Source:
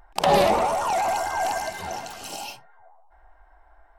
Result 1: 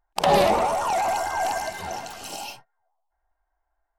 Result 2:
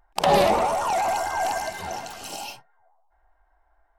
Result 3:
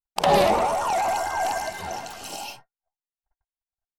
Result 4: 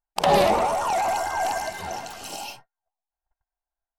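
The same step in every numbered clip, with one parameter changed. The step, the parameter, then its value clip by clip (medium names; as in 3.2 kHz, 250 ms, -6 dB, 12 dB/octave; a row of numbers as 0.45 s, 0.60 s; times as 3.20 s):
gate, range: -22 dB, -10 dB, -56 dB, -38 dB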